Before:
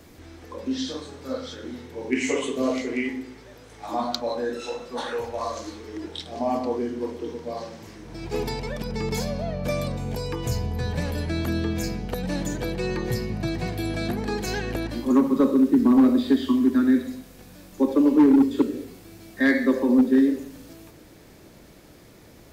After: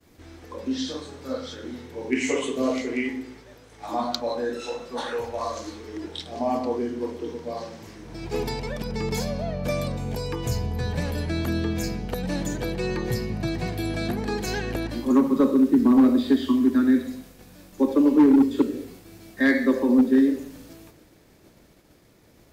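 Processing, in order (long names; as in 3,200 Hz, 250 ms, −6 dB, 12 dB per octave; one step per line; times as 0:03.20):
downward expander −43 dBFS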